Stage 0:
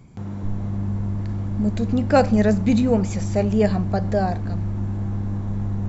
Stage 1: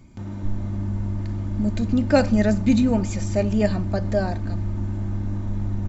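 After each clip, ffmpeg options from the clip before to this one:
ffmpeg -i in.wav -af "equalizer=frequency=670:width_type=o:width=2.3:gain=-3.5,aecho=1:1:3.3:0.53" out.wav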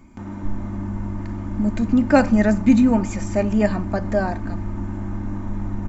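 ffmpeg -i in.wav -af "equalizer=frequency=125:width_type=o:width=1:gain=-9,equalizer=frequency=250:width_type=o:width=1:gain=5,equalizer=frequency=500:width_type=o:width=1:gain=-3,equalizer=frequency=1000:width_type=o:width=1:gain=6,equalizer=frequency=2000:width_type=o:width=1:gain=3,equalizer=frequency=4000:width_type=o:width=1:gain=-7,volume=1.5dB" out.wav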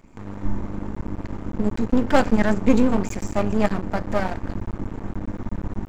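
ffmpeg -i in.wav -af "aeval=exprs='max(val(0),0)':channel_layout=same,volume=2dB" out.wav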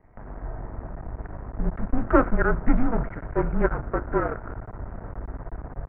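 ffmpeg -i in.wav -af "highpass=frequency=170:width_type=q:width=0.5412,highpass=frequency=170:width_type=q:width=1.307,lowpass=frequency=2100:width_type=q:width=0.5176,lowpass=frequency=2100:width_type=q:width=0.7071,lowpass=frequency=2100:width_type=q:width=1.932,afreqshift=-240,adynamicequalizer=threshold=0.00282:dfrequency=1400:dqfactor=6.6:tfrequency=1400:tqfactor=6.6:attack=5:release=100:ratio=0.375:range=4:mode=boostabove:tftype=bell" out.wav

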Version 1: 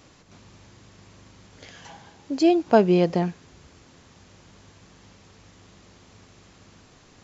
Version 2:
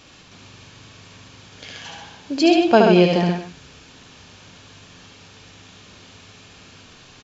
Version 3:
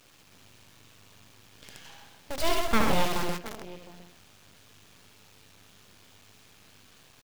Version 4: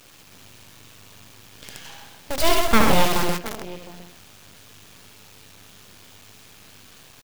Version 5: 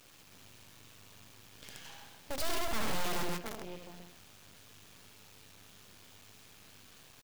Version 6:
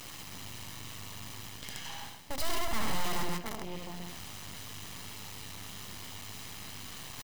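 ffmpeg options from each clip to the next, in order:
ffmpeg -i in.wav -filter_complex "[0:a]equalizer=frequency=2900:width=0.69:gain=9,bandreject=frequency=2000:width=9.9,asplit=2[link_01][link_02];[link_02]aecho=0:1:73|131|225:0.668|0.531|0.178[link_03];[link_01][link_03]amix=inputs=2:normalize=0,volume=1.5dB" out.wav
ffmpeg -i in.wav -af "aecho=1:1:710:0.119,acrusher=bits=5:dc=4:mix=0:aa=0.000001,aeval=exprs='abs(val(0))':channel_layout=same,volume=-8.5dB" out.wav
ffmpeg -i in.wav -af "highshelf=frequency=8800:gain=4.5,volume=7.5dB" out.wav
ffmpeg -i in.wav -af "asoftclip=type=tanh:threshold=-17.5dB,volume=-9dB" out.wav
ffmpeg -i in.wav -af "aecho=1:1:1:0.34,areverse,acompressor=mode=upward:threshold=-32dB:ratio=2.5,areverse,volume=1dB" out.wav

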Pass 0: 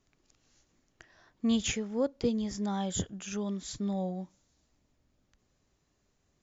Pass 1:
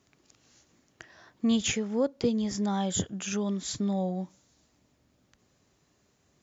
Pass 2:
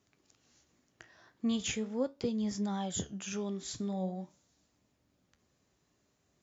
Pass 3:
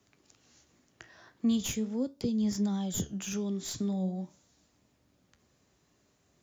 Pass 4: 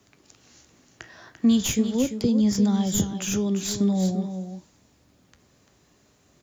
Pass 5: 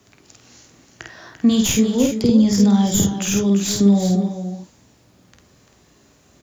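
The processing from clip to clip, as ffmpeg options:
ffmpeg -i in.wav -filter_complex "[0:a]highpass=87,asplit=2[link_01][link_02];[link_02]acompressor=threshold=-37dB:ratio=6,volume=2dB[link_03];[link_01][link_03]amix=inputs=2:normalize=0" out.wav
ffmpeg -i in.wav -af "flanger=delay=9.5:depth=8.4:regen=71:speed=0.41:shape=sinusoidal,volume=-2dB" out.wav
ffmpeg -i in.wav -filter_complex "[0:a]acrossover=split=220|350|3800[link_01][link_02][link_03][link_04];[link_03]acompressor=threshold=-51dB:ratio=4[link_05];[link_04]aeval=exprs='clip(val(0),-1,0.00668)':channel_layout=same[link_06];[link_01][link_02][link_05][link_06]amix=inputs=4:normalize=0,volume=5dB" out.wav
ffmpeg -i in.wav -af "aecho=1:1:343:0.355,volume=8.5dB" out.wav
ffmpeg -i in.wav -filter_complex "[0:a]asplit=2[link_01][link_02];[link_02]adelay=50,volume=-3dB[link_03];[link_01][link_03]amix=inputs=2:normalize=0,volume=5dB" out.wav

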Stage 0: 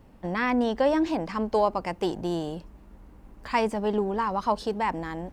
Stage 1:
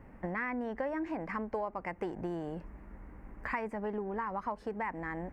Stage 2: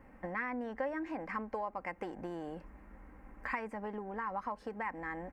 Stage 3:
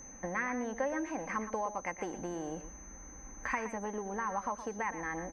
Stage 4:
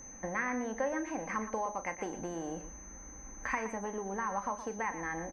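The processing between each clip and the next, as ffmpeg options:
ffmpeg -i in.wav -af "highshelf=frequency=2700:width_type=q:width=3:gain=-10,acompressor=threshold=-34dB:ratio=5" out.wav
ffmpeg -i in.wav -af "lowshelf=frequency=380:gain=-6,aecho=1:1:3.8:0.34,volume=-1dB" out.wav
ffmpeg -i in.wav -af "aeval=exprs='val(0)+0.00282*sin(2*PI*6200*n/s)':channel_layout=same,aecho=1:1:118:0.266,volume=2.5dB" out.wav
ffmpeg -i in.wav -filter_complex "[0:a]asplit=2[link_01][link_02];[link_02]adelay=36,volume=-12dB[link_03];[link_01][link_03]amix=inputs=2:normalize=0" out.wav

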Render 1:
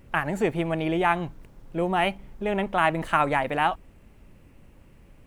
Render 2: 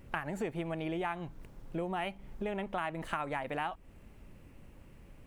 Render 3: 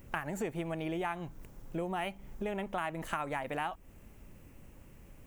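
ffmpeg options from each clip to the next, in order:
ffmpeg -i in.wav -af "acompressor=threshold=-32dB:ratio=4,volume=-2dB" out.wav
ffmpeg -i in.wav -af "aexciter=amount=1.9:drive=6.2:freq=5800" out.wav

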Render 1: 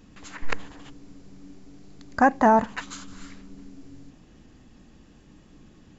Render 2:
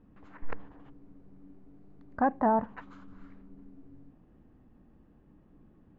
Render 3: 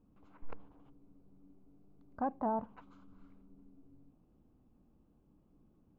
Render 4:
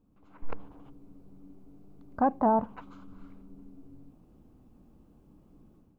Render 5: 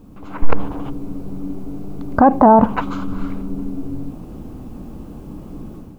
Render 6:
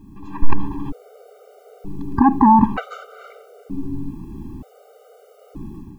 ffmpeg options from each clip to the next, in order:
ffmpeg -i in.wav -af "lowpass=1200,volume=-7dB" out.wav
ffmpeg -i in.wav -af "equalizer=frequency=1800:width_type=o:width=0.33:gain=-14.5,volume=-8.5dB" out.wav
ffmpeg -i in.wav -af "dynaudnorm=framelen=240:gausssize=3:maxgain=10dB" out.wav
ffmpeg -i in.wav -af "alimiter=level_in=25.5dB:limit=-1dB:release=50:level=0:latency=1,volume=-1dB" out.wav
ffmpeg -i in.wav -af "afftfilt=real='re*gt(sin(2*PI*0.54*pts/sr)*(1-2*mod(floor(b*sr/1024/390),2)),0)':imag='im*gt(sin(2*PI*0.54*pts/sr)*(1-2*mod(floor(b*sr/1024/390),2)),0)':win_size=1024:overlap=0.75" out.wav

